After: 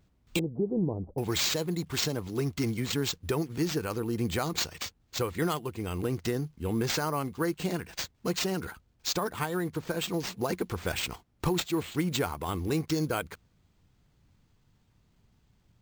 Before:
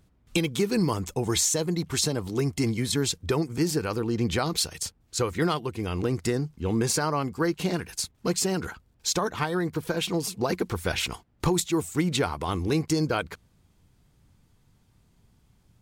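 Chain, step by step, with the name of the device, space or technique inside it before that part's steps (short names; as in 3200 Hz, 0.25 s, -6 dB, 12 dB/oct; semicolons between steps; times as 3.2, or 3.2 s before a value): early companding sampler (sample-rate reducer 11000 Hz, jitter 0%; companded quantiser 8-bit); 0.39–1.18 steep low-pass 760 Hz 36 dB/oct; gain -4 dB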